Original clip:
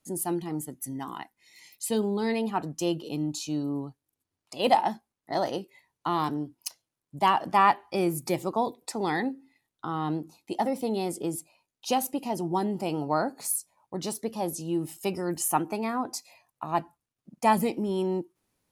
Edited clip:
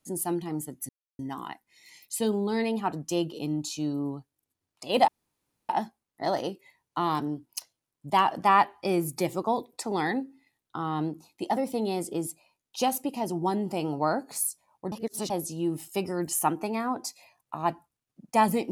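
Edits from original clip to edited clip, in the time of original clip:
0:00.89: splice in silence 0.30 s
0:04.78: splice in room tone 0.61 s
0:14.01–0:14.39: reverse

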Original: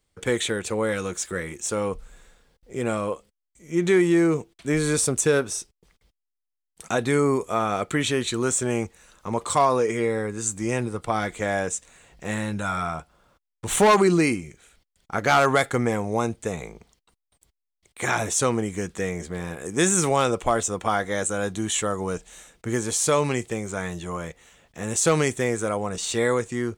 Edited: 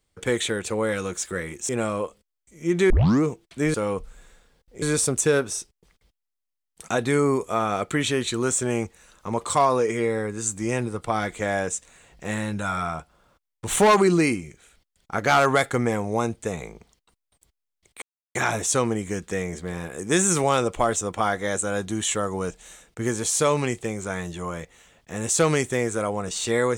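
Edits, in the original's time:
0:01.69–0:02.77: move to 0:04.82
0:03.98: tape start 0.33 s
0:18.02: splice in silence 0.33 s

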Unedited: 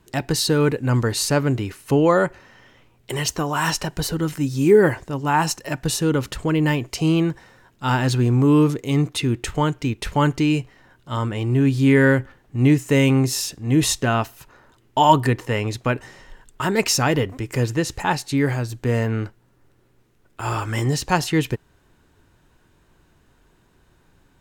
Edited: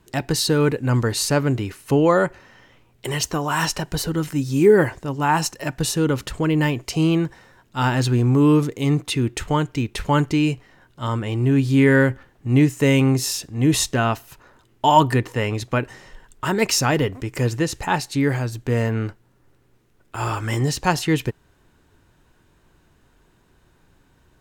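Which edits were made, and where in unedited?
compress silence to 90%

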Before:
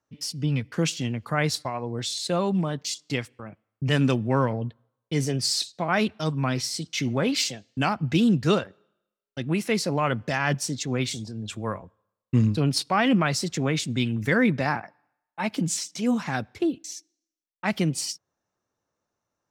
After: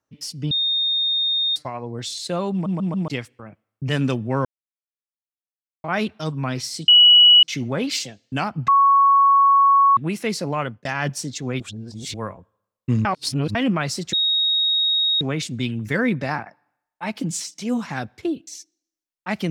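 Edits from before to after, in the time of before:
0:00.51–0:01.56: beep over 3,680 Hz −18 dBFS
0:02.52: stutter in place 0.14 s, 4 plays
0:04.45–0:05.84: silence
0:06.88: insert tone 2,930 Hz −7.5 dBFS 0.55 s
0:08.13–0:09.42: beep over 1,110 Hz −11 dBFS
0:10.05–0:10.30: fade out
0:11.05–0:11.59: reverse
0:12.50–0:13.00: reverse
0:13.58: insert tone 3,760 Hz −16.5 dBFS 1.08 s

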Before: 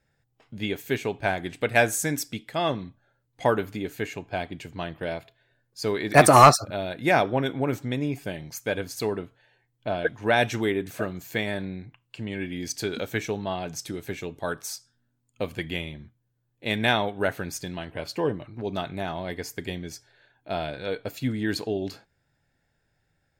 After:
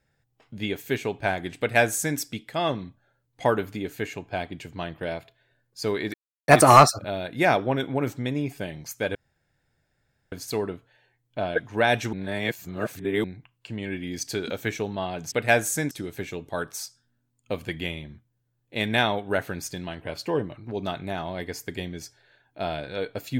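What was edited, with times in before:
0:01.59–0:02.18: duplicate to 0:13.81
0:06.14: splice in silence 0.34 s
0:08.81: splice in room tone 1.17 s
0:10.62–0:11.73: reverse

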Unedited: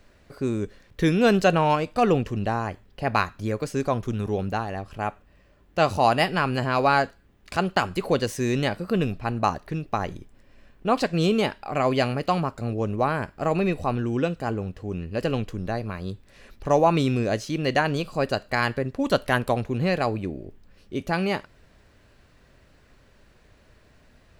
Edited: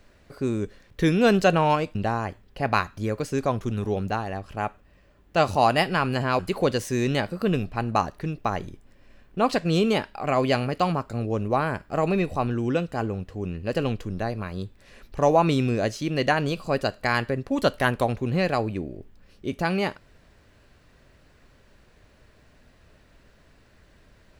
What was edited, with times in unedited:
0:01.95–0:02.37: remove
0:06.81–0:07.87: remove

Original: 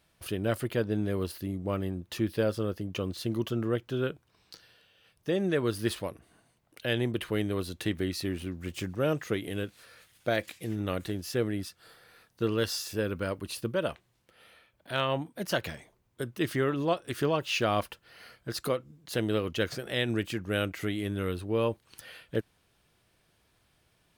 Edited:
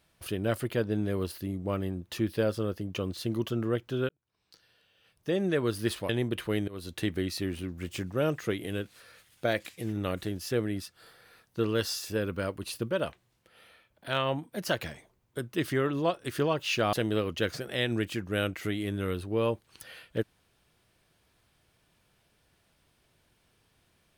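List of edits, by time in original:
0:04.09–0:05.34: fade in
0:06.09–0:06.92: remove
0:07.51–0:07.76: fade in, from −21 dB
0:17.76–0:19.11: remove

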